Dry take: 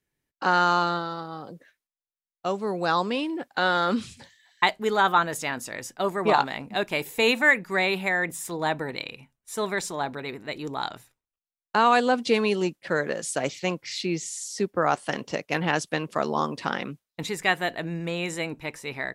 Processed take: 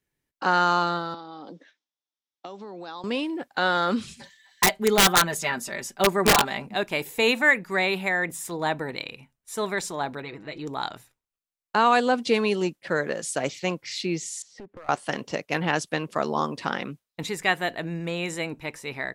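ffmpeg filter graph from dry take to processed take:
-filter_complex "[0:a]asettb=1/sr,asplit=3[a][b][c];[a]atrim=end=1.144[d];[b]atrim=start=1.14:end=3.04,asetpts=PTS-STARTPTS,afade=t=in:d=0.004:c=qsin,afade=t=out:st=1.896:d=0.004:c=qsin,acompressor=threshold=-37dB:ratio=6:attack=3.2:release=140:knee=1:detection=peak,highpass=f=180:w=0.5412,highpass=f=180:w=1.3066,equalizer=f=290:t=q:w=4:g=8,equalizer=f=860:t=q:w=4:g=5,equalizer=f=3.5k:t=q:w=4:g=9,equalizer=f=5.5k:t=q:w=4:g=6,lowpass=f=6.6k:w=0.5412,lowpass=f=6.6k:w=1.3066[e];[c]atrim=start=3.036[f];[d][e]acrossfade=d=0.004:c1=hsin:c2=qsin[g];[g][f]acrossfade=d=0.004:c1=qsin:c2=hsin,asettb=1/sr,asplit=3[h][i][j];[h]atrim=end=4.074[k];[i]atrim=start=4.07:end=6.67,asetpts=PTS-STARTPTS,afade=t=in:d=0.004:c=qsin,afade=t=out:st=2.596:d=0.004:c=qsin,aecho=1:1:5.1:0.91,atrim=end_sample=114660,aeval=exprs='(mod(3.35*val(0)+1,2)-1)/3.35':c=same[l];[j]atrim=start=6.666[m];[k][l]acrossfade=d=0.004:c1=hsin:c2=qsin[n];[n][m]acrossfade=d=0.004:c1=qsin:c2=hsin,asettb=1/sr,asplit=3[o][p][q];[o]atrim=end=10.224[r];[p]atrim=start=10.22:end=10.67,asetpts=PTS-STARTPTS,afade=t=in:d=0.004:c=qsin,afade=t=out:st=0.446:d=0.004:c=qsin,lowpass=5.4k,acompressor=threshold=-35dB:ratio=2:attack=3.2:release=140:knee=1:detection=peak,aecho=1:1:6.2:0.5,atrim=end_sample=19845[s];[q]atrim=start=10.666[t];[r][s]acrossfade=d=0.004:c1=hsin:c2=qsin[u];[u][t]acrossfade=d=0.004:c1=qsin:c2=hsin,asettb=1/sr,asplit=3[v][w][x];[v]atrim=end=14.424[y];[w]atrim=start=14.42:end=14.89,asetpts=PTS-STARTPTS,afade=t=in:d=0.004:c=qsin,afade=t=out:st=0.466:d=0.004:c=qsin,lowpass=2.2k,acompressor=threshold=-36dB:ratio=8:attack=3.2:release=140:knee=1:detection=peak,aeval=exprs='clip(val(0),-1,0.00841)':c=same[z];[x]atrim=start=14.886[aa];[y][z]acrossfade=d=0.004:c1=hsin:c2=qsin[ab];[ab][aa]acrossfade=d=0.004:c1=qsin:c2=hsin"

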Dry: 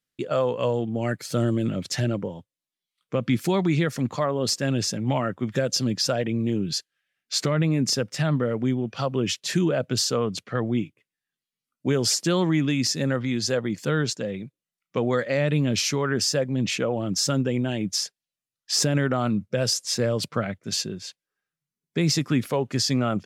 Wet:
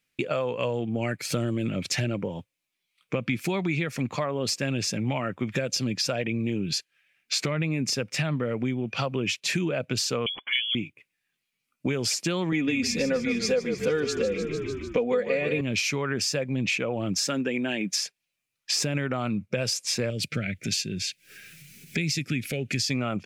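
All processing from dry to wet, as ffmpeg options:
-filter_complex "[0:a]asettb=1/sr,asplit=3[a][b][c];[a]atrim=end=10.264[d];[b]atrim=start=10.26:end=10.75,asetpts=PTS-STARTPTS,afade=t=in:d=0.004:c=qsin,afade=t=out:st=0.486:d=0.004:c=qsin,aecho=1:1:1.6:0.32,atrim=end_sample=21609,lowpass=f=3k:t=q:w=0.5098,lowpass=f=3k:t=q:w=0.6013,lowpass=f=3k:t=q:w=0.9,lowpass=f=3k:t=q:w=2.563,afreqshift=-3500[e];[c]atrim=start=10.746[f];[d][e]acrossfade=d=0.004:c1=hsin:c2=qsin[g];[g][f]acrossfade=d=0.004:c1=qsin:c2=hsin,asettb=1/sr,asplit=3[h][i][j];[h]atrim=end=12.524[k];[i]atrim=start=12.52:end=15.61,asetpts=PTS-STARTPTS,afade=t=in:d=0.004:c=qsin,afade=t=out:st=3.086:d=0.004:c=qsin,equalizer=f=490:t=o:w=0.79:g=8.5,aecho=1:1:4.1:0.76,atrim=end_sample=136269,asplit=7[l][m][n][o][p][q][r];[m]adelay=150,afreqshift=-38,volume=-10dB[s];[n]adelay=300,afreqshift=-76,volume=-15dB[t];[o]adelay=450,afreqshift=-114,volume=-20.1dB[u];[p]adelay=600,afreqshift=-152,volume=-25.1dB[v];[q]adelay=750,afreqshift=-190,volume=-30.1dB[w];[r]adelay=900,afreqshift=-228,volume=-35.2dB[x];[l][s][t][u][v][w][x]amix=inputs=7:normalize=0,atrim=end_sample=136269[y];[j]atrim=start=15.606[z];[k][y]acrossfade=d=0.004:c1=hsin:c2=qsin[aa];[aa][z]acrossfade=d=0.004:c1=qsin:c2=hsin,asettb=1/sr,asplit=3[ab][ac][ad];[ab]atrim=end=17.194[ae];[ac]atrim=start=17.19:end=18.02,asetpts=PTS-STARTPTS,afade=t=in:d=0.004:c=qsin,afade=t=out:st=0.826:d=0.004:c=qsin,highpass=f=180:w=0.5412,highpass=f=180:w=1.3066,equalizer=f=1.7k:t=o:w=0.3:g=6.5[af];[ad]atrim=start=18.016[ag];[ae][af]acrossfade=d=0.004:c1=hsin:c2=qsin[ah];[ah][ag]acrossfade=d=0.004:c1=qsin:c2=hsin,asettb=1/sr,asplit=3[ai][aj][ak];[ai]atrim=end=20.104[al];[aj]atrim=start=20.1:end=22.9,asetpts=PTS-STARTPTS,afade=t=in:d=0.004:c=qsin,afade=t=out:st=2.796:d=0.004:c=qsin,equalizer=f=690:w=0.58:g=-10,acompressor=mode=upward:threshold=-28dB:ratio=2.5:attack=3.2:release=140:knee=2.83:detection=peak,asuperstop=centerf=1000:order=4:qfactor=1.3[am];[ak]atrim=start=22.896[an];[al][am]acrossfade=d=0.004:c1=hsin:c2=qsin[ao];[ao][an]acrossfade=d=0.004:c1=qsin:c2=hsin,equalizer=f=2.4k:w=3.6:g=12.5,acompressor=threshold=-32dB:ratio=4,volume=6dB"

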